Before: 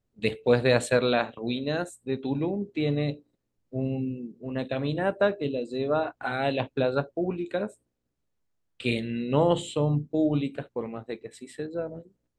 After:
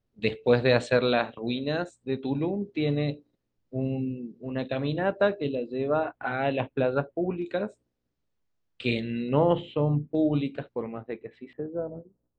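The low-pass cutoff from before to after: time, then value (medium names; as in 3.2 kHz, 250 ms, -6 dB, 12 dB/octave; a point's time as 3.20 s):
low-pass 24 dB/octave
5.9 kHz
from 5.55 s 3.1 kHz
from 7.42 s 6.2 kHz
from 9.29 s 2.8 kHz
from 10.15 s 5.4 kHz
from 10.81 s 2.8 kHz
from 11.53 s 1.2 kHz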